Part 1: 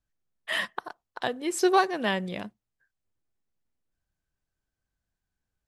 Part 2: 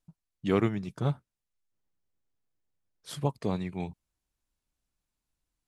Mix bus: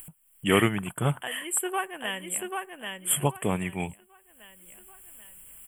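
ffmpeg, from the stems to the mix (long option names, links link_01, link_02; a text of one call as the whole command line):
ffmpeg -i stem1.wav -i stem2.wav -filter_complex "[0:a]volume=-12dB,asplit=2[link_01][link_02];[link_02]volume=-4dB[link_03];[1:a]volume=2dB[link_04];[link_03]aecho=0:1:787|1574|2361|3148:1|0.22|0.0484|0.0106[link_05];[link_01][link_04][link_05]amix=inputs=3:normalize=0,acompressor=mode=upward:threshold=-44dB:ratio=2.5,crystalizer=i=9:c=0,asuperstop=centerf=5000:order=20:qfactor=1.2" out.wav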